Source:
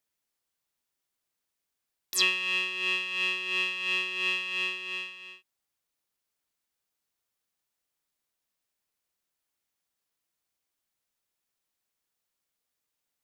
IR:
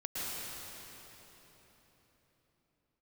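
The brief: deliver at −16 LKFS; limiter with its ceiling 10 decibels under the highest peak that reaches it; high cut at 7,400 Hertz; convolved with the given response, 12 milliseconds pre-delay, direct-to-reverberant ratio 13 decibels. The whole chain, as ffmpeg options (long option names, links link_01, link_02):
-filter_complex "[0:a]lowpass=7400,alimiter=limit=-21dB:level=0:latency=1,asplit=2[link_01][link_02];[1:a]atrim=start_sample=2205,adelay=12[link_03];[link_02][link_03]afir=irnorm=-1:irlink=0,volume=-17.5dB[link_04];[link_01][link_04]amix=inputs=2:normalize=0,volume=13dB"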